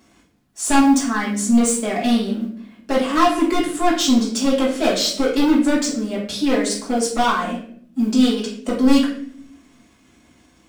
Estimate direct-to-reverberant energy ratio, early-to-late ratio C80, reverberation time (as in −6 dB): −7.0 dB, 10.0 dB, 0.60 s